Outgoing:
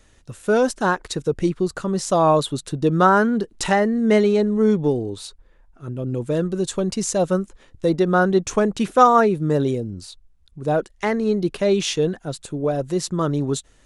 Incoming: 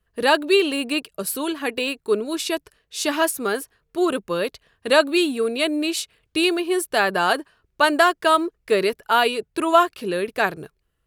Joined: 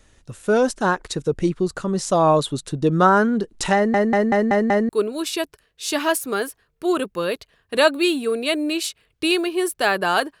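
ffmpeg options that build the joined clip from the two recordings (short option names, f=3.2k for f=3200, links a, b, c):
-filter_complex "[0:a]apad=whole_dur=10.4,atrim=end=10.4,asplit=6[a][b][c][d][e][f];[a]atrim=end=3.942[g];[b]atrim=start=3.748:end=3.942[h];[c]atrim=start=3.748:end=3.942[i];[d]atrim=start=3.748:end=3.942[j];[e]atrim=start=3.748:end=3.942[k];[f]atrim=start=3.748:end=3.942[l];[1:a]atrim=start=2.018:end=7.53[m];[g][h]acrossfade=d=0.004:c1=hsin:c2=hsin[n];[n][i]acrossfade=d=0.004:c1=hsin:c2=hsin[o];[o][j]acrossfade=d=0.004:c1=hsin:c2=hsin[p];[p][k]acrossfade=d=0.004:c1=hsin:c2=hsin[q];[q][l]acrossfade=d=0.004:c1=hsin:c2=hsin[r];[r][m]acrossfade=d=0.004:c1=hsin:c2=hsin"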